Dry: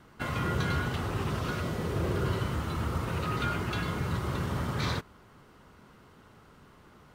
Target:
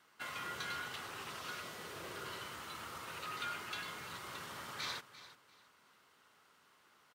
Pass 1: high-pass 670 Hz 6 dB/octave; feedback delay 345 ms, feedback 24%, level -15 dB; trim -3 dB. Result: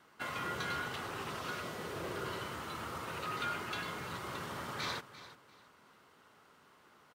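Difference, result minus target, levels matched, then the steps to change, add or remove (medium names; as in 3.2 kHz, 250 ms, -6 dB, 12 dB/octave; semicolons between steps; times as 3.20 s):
500 Hz band +4.5 dB
change: high-pass 2.1 kHz 6 dB/octave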